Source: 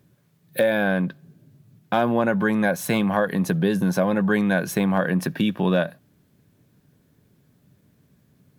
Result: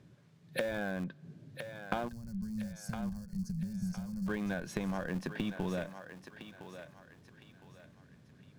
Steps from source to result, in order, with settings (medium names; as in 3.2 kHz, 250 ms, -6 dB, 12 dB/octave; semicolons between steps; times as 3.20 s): low-pass 6.3 kHz 12 dB/octave; in parallel at -6 dB: Schmitt trigger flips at -18 dBFS; on the sum: compression 12:1, threshold -32 dBFS, peak gain reduction 18 dB; time-frequency box 2.08–4.27 s, 220–4200 Hz -26 dB; on a send: thinning echo 1011 ms, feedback 39%, high-pass 510 Hz, level -8 dB